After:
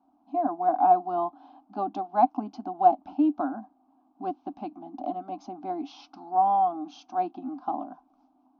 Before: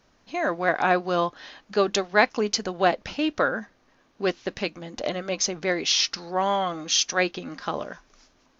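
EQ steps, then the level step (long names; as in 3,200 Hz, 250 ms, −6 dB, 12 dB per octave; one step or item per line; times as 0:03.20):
pair of resonant band-passes 460 Hz, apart 1.4 octaves
high-frequency loss of the air 140 metres
phaser with its sweep stopped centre 500 Hz, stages 6
+8.5 dB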